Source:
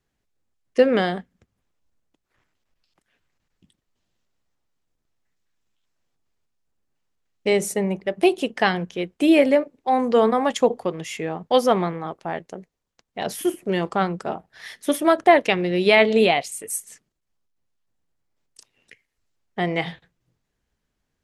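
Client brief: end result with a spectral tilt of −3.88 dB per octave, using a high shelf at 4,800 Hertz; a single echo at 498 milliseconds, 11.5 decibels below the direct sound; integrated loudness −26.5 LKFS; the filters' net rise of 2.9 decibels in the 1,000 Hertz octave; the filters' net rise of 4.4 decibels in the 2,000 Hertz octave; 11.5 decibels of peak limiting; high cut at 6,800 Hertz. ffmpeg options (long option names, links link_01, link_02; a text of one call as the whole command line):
ffmpeg -i in.wav -af "lowpass=6800,equalizer=frequency=1000:width_type=o:gain=3.5,equalizer=frequency=2000:width_type=o:gain=5,highshelf=frequency=4800:gain=-4,alimiter=limit=-11.5dB:level=0:latency=1,aecho=1:1:498:0.266,volume=-2.5dB" out.wav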